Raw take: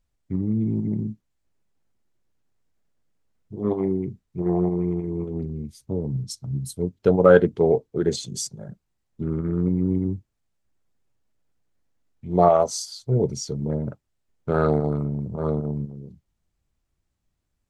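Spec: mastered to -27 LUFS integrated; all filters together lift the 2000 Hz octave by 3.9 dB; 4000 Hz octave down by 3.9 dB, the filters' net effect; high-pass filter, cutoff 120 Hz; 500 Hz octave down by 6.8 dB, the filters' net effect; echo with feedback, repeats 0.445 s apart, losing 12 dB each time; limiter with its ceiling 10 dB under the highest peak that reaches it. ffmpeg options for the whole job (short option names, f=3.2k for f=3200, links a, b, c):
-af "highpass=120,equalizer=f=500:t=o:g=-9,equalizer=f=2k:t=o:g=8,equalizer=f=4k:t=o:g=-6.5,alimiter=limit=-15.5dB:level=0:latency=1,aecho=1:1:445|890|1335:0.251|0.0628|0.0157,volume=2.5dB"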